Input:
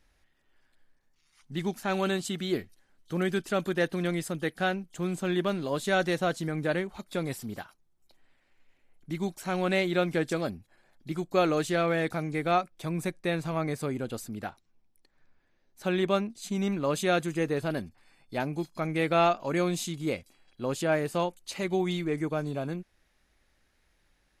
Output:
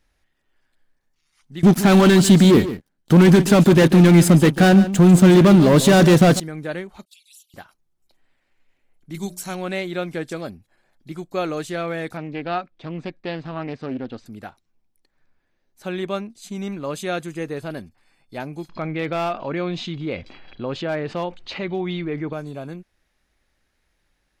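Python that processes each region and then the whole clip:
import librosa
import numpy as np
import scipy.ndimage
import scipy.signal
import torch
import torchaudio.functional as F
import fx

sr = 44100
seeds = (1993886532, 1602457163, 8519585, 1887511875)

y = fx.chain(x, sr, fx.leveller(passes=5),
    fx.peak_eq(hz=190.0, db=9.0, octaves=2.3),
    fx.echo_single(ms=144, db=-13.5), at=(1.63, 6.4))
y = fx.chain(y, sr, fx.cheby1_highpass(hz=2700.0, order=6),
    fx.env_flanger(rest_ms=3.7, full_db=-43.0), at=(7.05, 7.54))
y = fx.chain(y, sr, fx.bass_treble(bass_db=5, treble_db=13),
    fx.hum_notches(base_hz=60, count=10), at=(9.14, 9.55))
y = fx.chain(y, sr, fx.lowpass(hz=4400.0, slope=24),
    fx.peak_eq(hz=260.0, db=7.5, octaves=0.35),
    fx.doppler_dist(depth_ms=0.24), at=(12.17, 14.26))
y = fx.chain(y, sr, fx.lowpass(hz=3900.0, slope=24),
    fx.clip_hard(threshold_db=-18.5),
    fx.env_flatten(amount_pct=50), at=(18.69, 22.33))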